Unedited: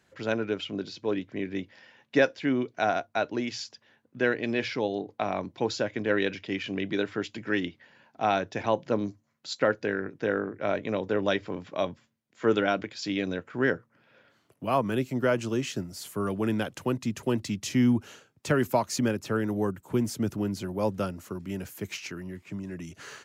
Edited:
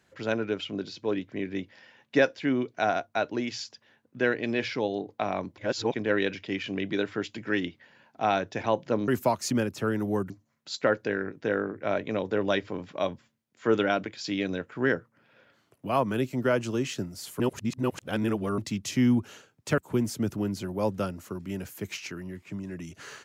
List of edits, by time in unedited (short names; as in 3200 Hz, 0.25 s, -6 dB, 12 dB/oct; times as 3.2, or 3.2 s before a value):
5.58–5.94 reverse
16.18–17.36 reverse
18.56–19.78 move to 9.08